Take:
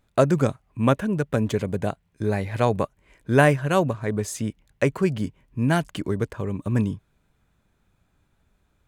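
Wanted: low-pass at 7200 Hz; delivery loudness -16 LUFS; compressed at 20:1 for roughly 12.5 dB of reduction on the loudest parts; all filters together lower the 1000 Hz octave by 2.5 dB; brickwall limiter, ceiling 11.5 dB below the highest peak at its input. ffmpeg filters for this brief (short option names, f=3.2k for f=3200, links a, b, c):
-af "lowpass=7.2k,equalizer=f=1k:t=o:g=-3.5,acompressor=threshold=-24dB:ratio=20,volume=19dB,alimiter=limit=-5.5dB:level=0:latency=1"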